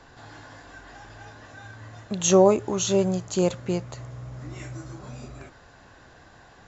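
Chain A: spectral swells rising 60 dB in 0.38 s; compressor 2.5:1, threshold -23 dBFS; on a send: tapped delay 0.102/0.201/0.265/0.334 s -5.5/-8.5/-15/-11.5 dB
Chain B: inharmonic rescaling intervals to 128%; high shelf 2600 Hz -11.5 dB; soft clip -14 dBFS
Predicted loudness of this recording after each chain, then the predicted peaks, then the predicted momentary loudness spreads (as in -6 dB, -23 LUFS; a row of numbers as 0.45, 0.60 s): -27.0, -28.5 LUFS; -9.5, -14.5 dBFS; 19, 22 LU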